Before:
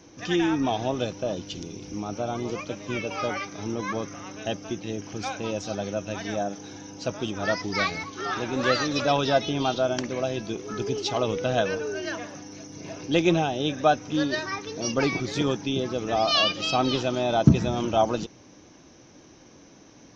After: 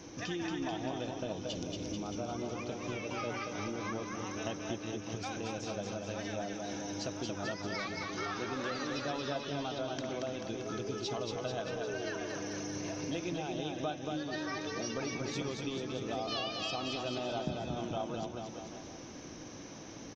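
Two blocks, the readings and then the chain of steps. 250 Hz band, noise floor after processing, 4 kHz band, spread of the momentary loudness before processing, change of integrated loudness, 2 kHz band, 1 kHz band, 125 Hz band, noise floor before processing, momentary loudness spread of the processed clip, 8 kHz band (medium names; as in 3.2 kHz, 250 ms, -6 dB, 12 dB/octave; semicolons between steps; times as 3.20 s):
-10.5 dB, -47 dBFS, -11.0 dB, 12 LU, -11.5 dB, -10.5 dB, -12.0 dB, -12.0 dB, -52 dBFS, 4 LU, no reading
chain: compression 5:1, threshold -40 dBFS, peak gain reduction 26 dB; bouncing-ball echo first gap 230 ms, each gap 0.9×, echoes 5; trim +2 dB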